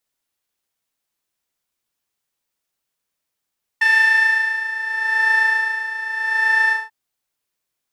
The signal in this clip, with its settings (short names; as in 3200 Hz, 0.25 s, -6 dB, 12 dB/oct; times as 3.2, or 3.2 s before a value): synth patch with tremolo A5, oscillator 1 saw, oscillator 2 square, interval +12 st, detune 27 cents, oscillator 2 level -2 dB, sub -18 dB, noise -13 dB, filter bandpass, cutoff 1100 Hz, Q 2.2, filter envelope 1 oct, filter decay 1.24 s, filter sustain 45%, attack 6.3 ms, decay 0.28 s, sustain -6 dB, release 0.19 s, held 2.90 s, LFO 0.81 Hz, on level 11 dB